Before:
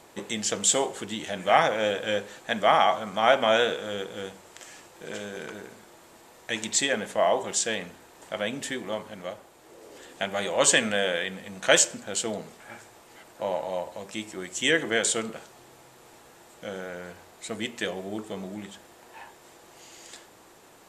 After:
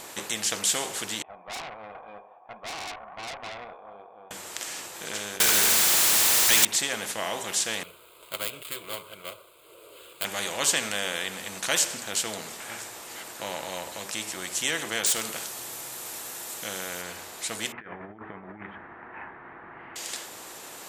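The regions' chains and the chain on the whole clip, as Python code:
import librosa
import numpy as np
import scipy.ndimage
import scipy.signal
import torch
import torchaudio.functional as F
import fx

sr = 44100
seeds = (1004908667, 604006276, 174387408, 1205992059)

y = fx.chain(x, sr, fx.formant_cascade(vowel='a'),
    fx.echo_single(ms=409, db=-21.5),
    fx.tube_stage(drive_db=35.0, bias=0.35), at=(1.22, 4.31))
y = fx.chain(y, sr, fx.tilt_shelf(db=-10.0, hz=1400.0),
    fx.power_curve(exponent=0.35), at=(5.4, 6.65))
y = fx.chain(y, sr, fx.dead_time(dead_ms=0.11),
    fx.fixed_phaser(hz=1200.0, stages=8),
    fx.upward_expand(threshold_db=-43.0, expansion=1.5), at=(7.83, 10.25))
y = fx.chain(y, sr, fx.high_shelf(hz=7000.0, db=10.0),
    fx.clip_hard(threshold_db=-19.0), at=(15.06, 17.02))
y = fx.chain(y, sr, fx.steep_lowpass(hz=1900.0, slope=36),
    fx.peak_eq(hz=540.0, db=-11.5, octaves=0.77),
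    fx.over_compress(threshold_db=-41.0, ratio=-0.5), at=(17.72, 19.96))
y = fx.tilt_eq(y, sr, slope=2.0)
y = fx.spectral_comp(y, sr, ratio=2.0)
y = y * librosa.db_to_amplitude(-6.5)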